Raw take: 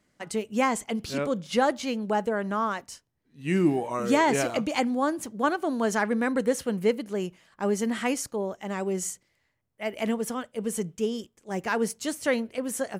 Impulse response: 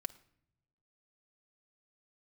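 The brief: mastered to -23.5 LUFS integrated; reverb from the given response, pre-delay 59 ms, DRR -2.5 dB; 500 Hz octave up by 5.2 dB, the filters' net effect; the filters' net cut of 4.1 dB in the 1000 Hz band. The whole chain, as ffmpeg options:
-filter_complex "[0:a]equalizer=f=500:t=o:g=8,equalizer=f=1k:t=o:g=-8.5,asplit=2[a][b];[1:a]atrim=start_sample=2205,adelay=59[c];[b][c]afir=irnorm=-1:irlink=0,volume=4.5dB[d];[a][d]amix=inputs=2:normalize=0,volume=-3dB"

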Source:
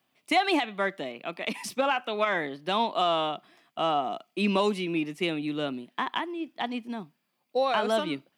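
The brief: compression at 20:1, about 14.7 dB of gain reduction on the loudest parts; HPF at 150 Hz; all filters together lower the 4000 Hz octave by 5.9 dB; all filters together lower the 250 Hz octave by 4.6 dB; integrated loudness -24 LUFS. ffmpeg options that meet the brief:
-af "highpass=150,equalizer=f=250:t=o:g=-5.5,equalizer=f=4k:t=o:g=-8.5,acompressor=threshold=-34dB:ratio=20,volume=16dB"

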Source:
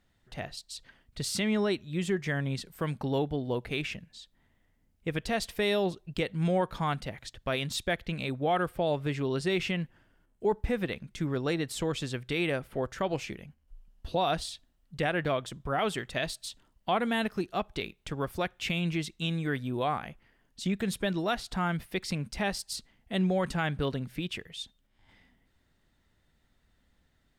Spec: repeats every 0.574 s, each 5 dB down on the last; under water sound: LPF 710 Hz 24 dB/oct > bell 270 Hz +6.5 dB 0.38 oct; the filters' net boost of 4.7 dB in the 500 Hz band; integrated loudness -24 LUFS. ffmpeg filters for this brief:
-af "lowpass=f=710:w=0.5412,lowpass=f=710:w=1.3066,equalizer=f=270:t=o:w=0.38:g=6.5,equalizer=f=500:t=o:g=6,aecho=1:1:574|1148|1722|2296|2870|3444|4018:0.562|0.315|0.176|0.0988|0.0553|0.031|0.0173,volume=4.5dB"

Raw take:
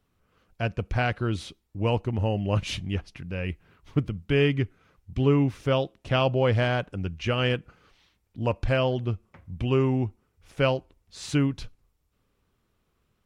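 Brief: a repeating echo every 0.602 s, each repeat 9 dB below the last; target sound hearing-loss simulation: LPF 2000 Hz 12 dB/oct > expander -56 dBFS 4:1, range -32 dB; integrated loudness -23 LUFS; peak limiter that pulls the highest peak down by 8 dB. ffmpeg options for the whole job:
-af "alimiter=limit=-17.5dB:level=0:latency=1,lowpass=2k,aecho=1:1:602|1204|1806|2408:0.355|0.124|0.0435|0.0152,agate=range=-32dB:threshold=-56dB:ratio=4,volume=7.5dB"

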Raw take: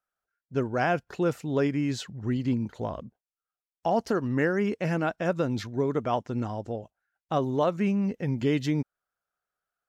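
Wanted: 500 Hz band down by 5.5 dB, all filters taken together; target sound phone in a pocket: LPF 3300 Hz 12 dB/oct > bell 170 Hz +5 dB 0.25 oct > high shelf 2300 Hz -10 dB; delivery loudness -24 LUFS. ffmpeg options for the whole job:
-af "lowpass=3.3k,equalizer=f=170:t=o:w=0.25:g=5,equalizer=f=500:t=o:g=-6.5,highshelf=f=2.3k:g=-10,volume=6dB"

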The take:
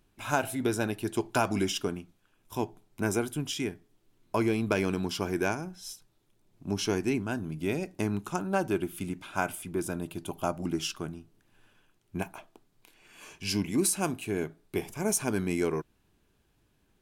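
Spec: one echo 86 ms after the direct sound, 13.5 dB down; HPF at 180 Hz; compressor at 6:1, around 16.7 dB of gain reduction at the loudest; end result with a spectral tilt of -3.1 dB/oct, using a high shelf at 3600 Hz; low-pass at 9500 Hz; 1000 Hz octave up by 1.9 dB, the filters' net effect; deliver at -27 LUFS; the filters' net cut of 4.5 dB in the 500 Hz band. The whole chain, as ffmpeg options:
-af "highpass=180,lowpass=9.5k,equalizer=f=500:t=o:g=-7.5,equalizer=f=1k:t=o:g=4.5,highshelf=f=3.6k:g=7,acompressor=threshold=-39dB:ratio=6,aecho=1:1:86:0.211,volume=16dB"

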